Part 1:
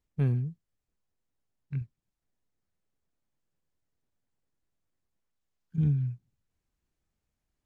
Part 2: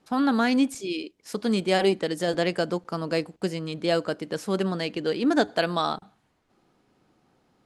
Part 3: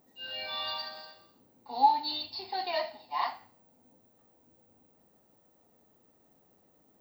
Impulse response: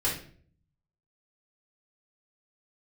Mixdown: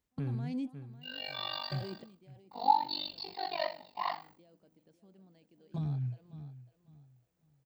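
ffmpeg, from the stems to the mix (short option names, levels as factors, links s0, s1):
-filter_complex "[0:a]highpass=f=95:p=1,volume=1.06,asplit=3[s0][s1][s2];[s1]volume=0.1[s3];[1:a]alimiter=limit=0.126:level=0:latency=1:release=23,firequalizer=gain_entry='entry(240,0);entry(400,-6);entry(770,-4);entry(1300,-15);entry(2100,-9)':delay=0.05:min_phase=1,volume=0.316,asplit=2[s4][s5];[s5]volume=0.0944[s6];[2:a]tremolo=f=48:d=0.974,agate=range=0.0224:threshold=0.00141:ratio=3:detection=peak,adelay=850,volume=1.12[s7];[s2]apad=whole_len=341883[s8];[s4][s8]sidechaingate=range=0.00708:threshold=0.001:ratio=16:detection=peak[s9];[s0][s9]amix=inputs=2:normalize=0,alimiter=level_in=1.68:limit=0.0631:level=0:latency=1:release=244,volume=0.596,volume=1[s10];[s3][s6]amix=inputs=2:normalize=0,aecho=0:1:549|1098|1647|2196:1|0.25|0.0625|0.0156[s11];[s7][s10][s11]amix=inputs=3:normalize=0"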